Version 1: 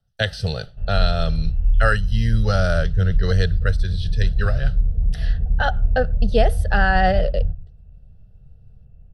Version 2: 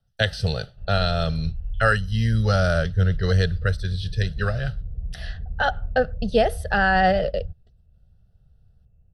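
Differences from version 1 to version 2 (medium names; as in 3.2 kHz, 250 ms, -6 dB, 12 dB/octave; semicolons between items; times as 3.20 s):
background -9.0 dB; reverb: off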